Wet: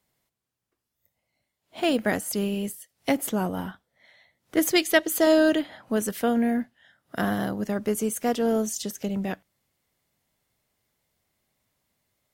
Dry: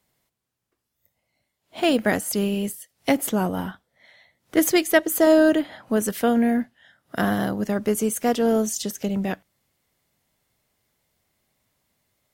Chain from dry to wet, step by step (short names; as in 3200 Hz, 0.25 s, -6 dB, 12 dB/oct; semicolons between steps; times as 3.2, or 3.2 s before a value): 4.71–6.04 dynamic EQ 3800 Hz, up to +7 dB, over -38 dBFS, Q 0.83; gain -3.5 dB